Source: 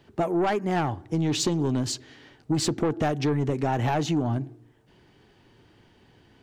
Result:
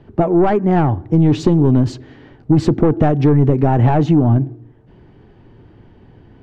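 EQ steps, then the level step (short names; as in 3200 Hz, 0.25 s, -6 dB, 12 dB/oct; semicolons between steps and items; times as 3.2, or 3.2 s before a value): LPF 1600 Hz 6 dB/oct; tilt -2 dB/oct; +8.5 dB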